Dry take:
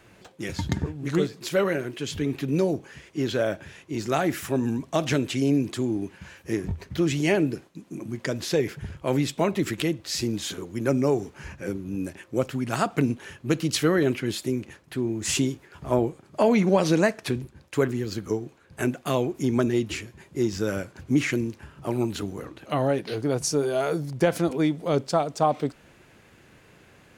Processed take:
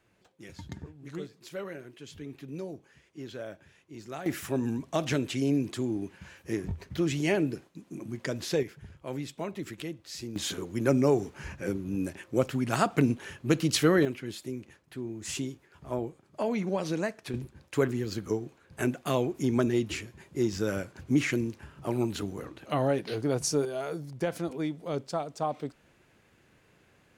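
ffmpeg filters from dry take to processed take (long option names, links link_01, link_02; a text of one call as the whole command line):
ffmpeg -i in.wav -af "asetnsamples=nb_out_samples=441:pad=0,asendcmd='4.26 volume volume -4.5dB;8.63 volume volume -12dB;10.36 volume volume -1dB;14.05 volume volume -10dB;17.34 volume volume -3dB;23.65 volume volume -9dB',volume=-15dB" out.wav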